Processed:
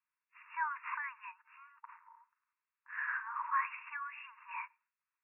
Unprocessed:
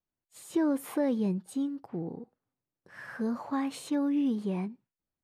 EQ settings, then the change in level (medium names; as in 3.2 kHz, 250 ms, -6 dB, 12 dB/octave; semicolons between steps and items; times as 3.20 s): brick-wall FIR band-pass 900–2800 Hz; +7.5 dB